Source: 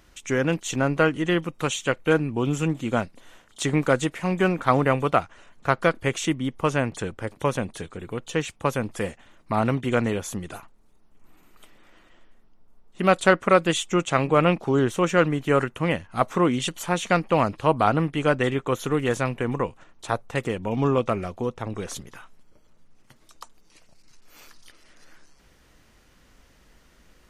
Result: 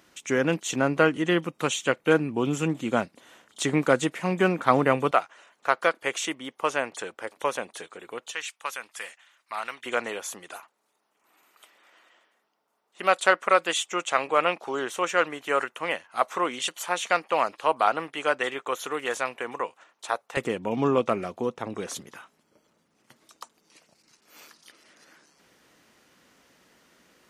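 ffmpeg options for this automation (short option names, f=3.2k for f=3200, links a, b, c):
-af "asetnsamples=n=441:p=0,asendcmd='5.11 highpass f 520;8.31 highpass f 1400;9.86 highpass f 610;20.37 highpass f 200',highpass=180"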